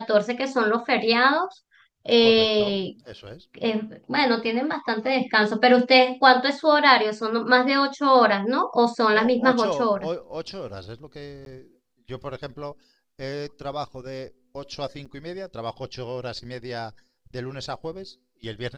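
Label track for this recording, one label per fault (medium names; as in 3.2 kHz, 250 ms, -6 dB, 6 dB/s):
11.450000	11.460000	dropout
15.050000	15.060000	dropout 6.4 ms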